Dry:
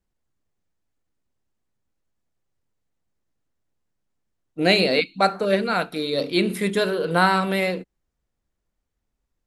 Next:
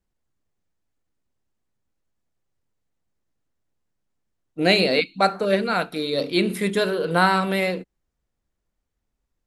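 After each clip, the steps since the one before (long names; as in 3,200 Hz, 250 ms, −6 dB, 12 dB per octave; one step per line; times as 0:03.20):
no processing that can be heard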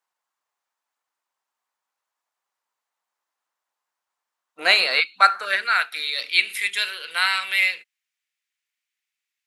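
high-pass filter sweep 970 Hz → 2,300 Hz, 0:04.33–0:06.46
level +2.5 dB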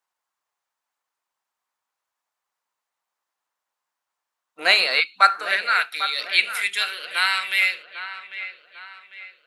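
delay with a low-pass on its return 798 ms, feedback 41%, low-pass 2,900 Hz, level −11.5 dB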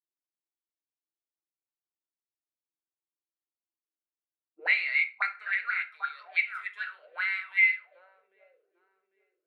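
envelope filter 320–2,100 Hz, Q 11, up, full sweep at −18 dBFS
convolution reverb RT60 0.35 s, pre-delay 5 ms, DRR 7 dB
one half of a high-frequency compander decoder only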